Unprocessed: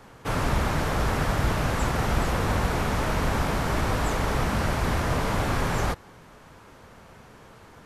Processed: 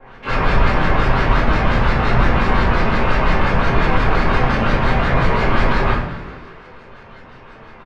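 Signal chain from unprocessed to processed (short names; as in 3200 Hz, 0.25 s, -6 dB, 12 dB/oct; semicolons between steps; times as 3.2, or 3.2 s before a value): de-hum 144.9 Hz, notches 39; LFO low-pass saw up 5.7 Hz 640–2800 Hz; harmoniser +12 st -8 dB; frequency-shifting echo 0.206 s, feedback 49%, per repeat +110 Hz, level -15 dB; shoebox room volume 84 m³, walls mixed, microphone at 2.2 m; gain -4 dB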